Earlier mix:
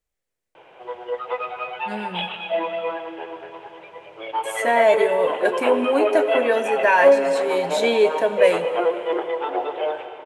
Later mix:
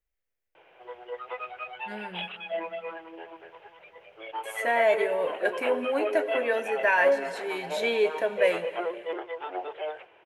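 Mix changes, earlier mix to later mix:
background: send off; master: add graphic EQ 125/250/500/1000/4000/8000 Hz -9/-8/-4/-7/-5/-11 dB

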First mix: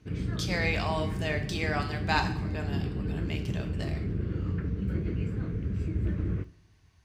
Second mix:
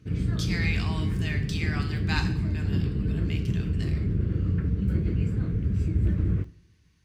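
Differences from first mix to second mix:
speech: add high-pass 1.4 kHz 12 dB/octave; background: add tone controls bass +6 dB, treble +7 dB

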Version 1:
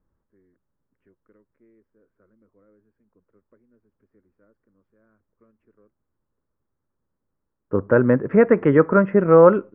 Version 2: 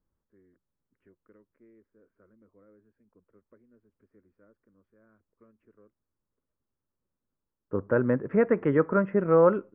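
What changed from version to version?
second voice -8.0 dB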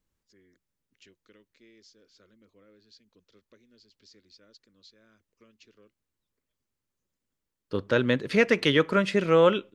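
master: remove inverse Chebyshev low-pass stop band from 3.7 kHz, stop band 50 dB

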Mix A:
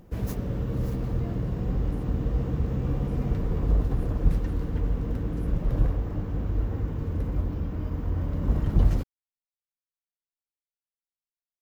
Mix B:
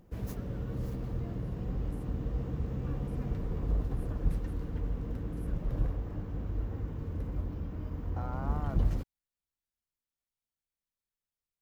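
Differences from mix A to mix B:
second voice: unmuted; background -7.5 dB

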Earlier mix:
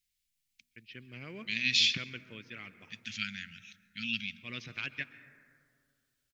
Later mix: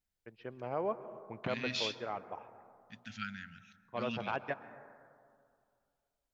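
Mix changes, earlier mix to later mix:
first voice: entry -0.50 s; master: remove FFT filter 240 Hz 0 dB, 810 Hz -26 dB, 2.2 kHz +11 dB

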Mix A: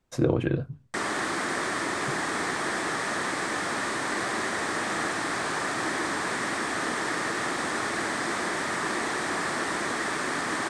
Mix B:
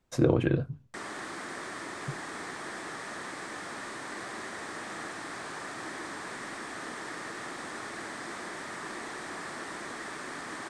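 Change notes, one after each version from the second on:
background -10.5 dB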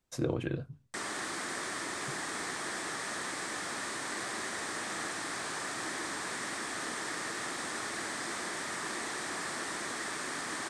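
speech -8.5 dB; master: add treble shelf 3.3 kHz +9 dB

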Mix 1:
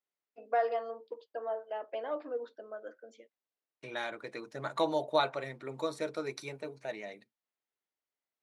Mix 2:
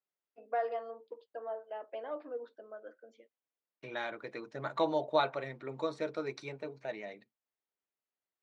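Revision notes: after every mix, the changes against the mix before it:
first voice -3.5 dB; master: add distance through air 120 m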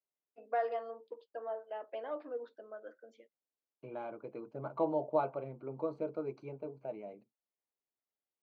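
second voice: add boxcar filter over 24 samples

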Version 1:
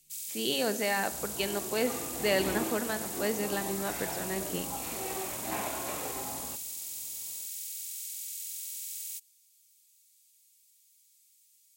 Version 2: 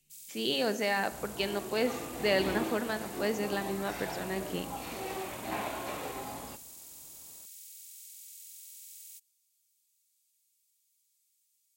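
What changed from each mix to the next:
first sound -10.0 dB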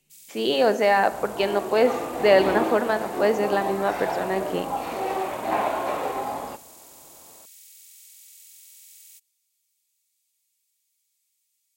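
master: add peaking EQ 720 Hz +13.5 dB 2.9 oct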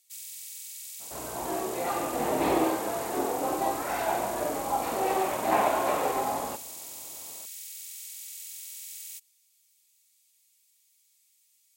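speech: muted; first sound +7.0 dB

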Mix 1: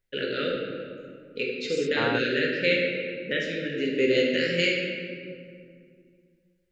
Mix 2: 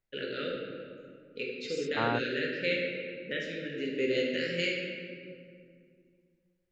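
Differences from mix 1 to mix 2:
first voice -7.0 dB; second voice: add distance through air 63 m

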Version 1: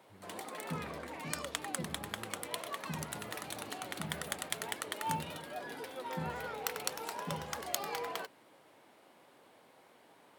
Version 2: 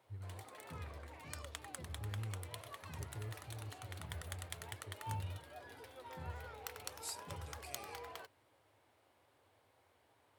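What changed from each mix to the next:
second voice +11.5 dB; background -10.0 dB; master: add resonant low shelf 130 Hz +11 dB, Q 3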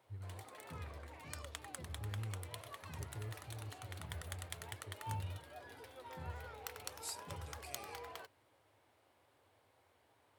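no change

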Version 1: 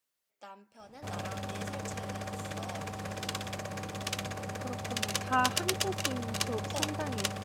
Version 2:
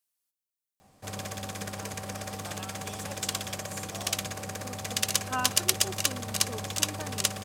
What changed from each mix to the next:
first voice: entry +1.35 s; second voice -4.5 dB; master: add treble shelf 4.6 kHz +12 dB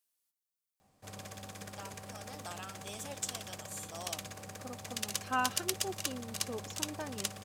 background -9.5 dB

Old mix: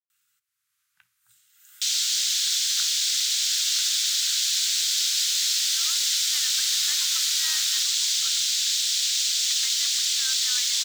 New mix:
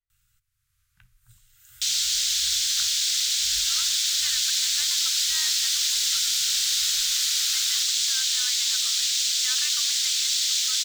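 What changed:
speech: entry -2.10 s; first sound: remove high-pass 440 Hz 12 dB/octave

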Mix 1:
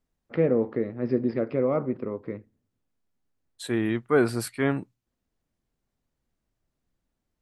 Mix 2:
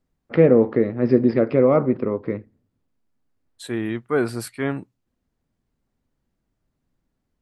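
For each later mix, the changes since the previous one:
first voice +8.5 dB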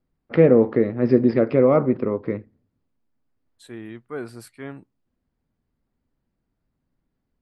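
second voice -11.0 dB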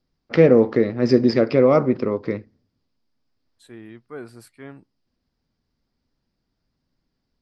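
first voice: remove distance through air 410 m; second voice -4.0 dB

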